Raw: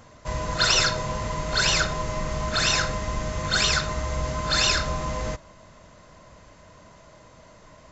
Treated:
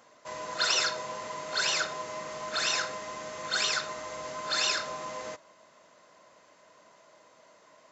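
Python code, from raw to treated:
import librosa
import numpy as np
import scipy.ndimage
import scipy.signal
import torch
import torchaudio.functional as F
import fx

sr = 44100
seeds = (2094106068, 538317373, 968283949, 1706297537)

y = scipy.signal.sosfilt(scipy.signal.butter(2, 360.0, 'highpass', fs=sr, output='sos'), x)
y = y * librosa.db_to_amplitude(-6.0)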